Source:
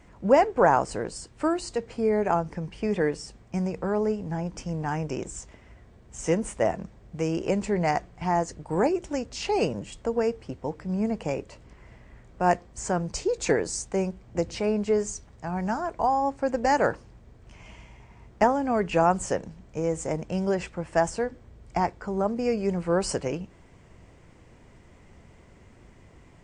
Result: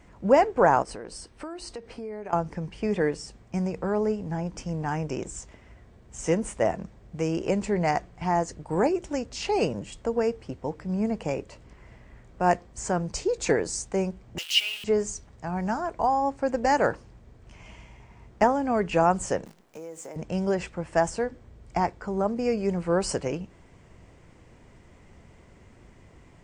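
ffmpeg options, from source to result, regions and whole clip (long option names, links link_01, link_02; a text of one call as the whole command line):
ffmpeg -i in.wav -filter_complex "[0:a]asettb=1/sr,asplit=3[link_01][link_02][link_03];[link_01]atrim=end=0.824[link_04];[link_02]atrim=start=0.82:end=2.33,asetpts=PTS-STARTPTS,afade=type=in:duration=0.004:curve=qsin,afade=type=out:start_time=1.506:duration=0.004:curve=qsin,equalizer=frequency=130:width_type=o:width=0.75:gain=-7.5,bandreject=frequency=7100:width=5.2,acompressor=threshold=-35dB:ratio=4:attack=3.2:release=140:knee=1:detection=peak[link_05];[link_03]atrim=start=2.326[link_06];[link_04][link_05]acrossfade=duration=0.004:curve1=hsin:curve2=qsin[link_07];[link_07][link_06]acrossfade=duration=0.004:curve1=qsin:curve2=hsin,asettb=1/sr,asplit=3[link_08][link_09][link_10];[link_08]atrim=end=14.384[link_11];[link_09]atrim=start=14.38:end=14.84,asetpts=PTS-STARTPTS,afade=type=in:duration=0.004:curve=qsin,afade=type=out:start_time=0.456:duration=0.004:curve=qsin,aeval=exprs='val(0)+0.5*0.0282*sgn(val(0))':channel_layout=same,highpass=frequency=2900:width_type=q:width=9.7,acrusher=bits=6:mix=0:aa=0.5[link_12];[link_10]atrim=start=14.836[link_13];[link_11][link_12]acrossfade=duration=0.004:curve1=hsin:curve2=qsin[link_14];[link_14][link_13]acrossfade=duration=0.004:curve1=qsin:curve2=hsin,asettb=1/sr,asplit=3[link_15][link_16][link_17];[link_15]atrim=end=19.454[link_18];[link_16]atrim=start=19.45:end=20.16,asetpts=PTS-STARTPTS,afade=type=in:duration=0.004:curve=qsin,afade=type=out:start_time=0.706:duration=0.004:curve=qsin,highpass=280,acrusher=bits=9:dc=4:mix=0:aa=0.000001,acompressor=threshold=-38dB:ratio=4:attack=3.2:release=140:knee=1:detection=peak[link_19];[link_17]atrim=start=20.156[link_20];[link_18][link_19]acrossfade=duration=0.004:curve1=hsin:curve2=qsin[link_21];[link_21][link_20]acrossfade=duration=0.004:curve1=qsin:curve2=hsin" out.wav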